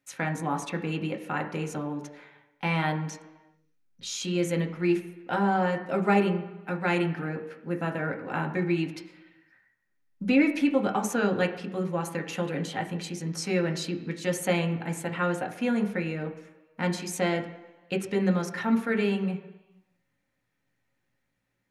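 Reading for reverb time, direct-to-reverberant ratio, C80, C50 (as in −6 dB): 1.2 s, 3.0 dB, 13.0 dB, 11.0 dB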